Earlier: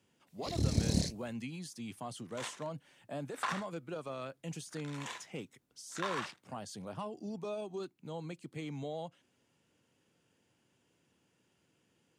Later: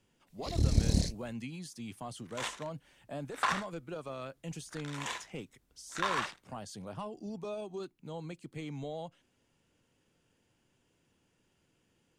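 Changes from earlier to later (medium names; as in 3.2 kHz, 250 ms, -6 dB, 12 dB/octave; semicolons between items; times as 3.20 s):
second sound +5.5 dB; master: remove high-pass 100 Hz 12 dB/octave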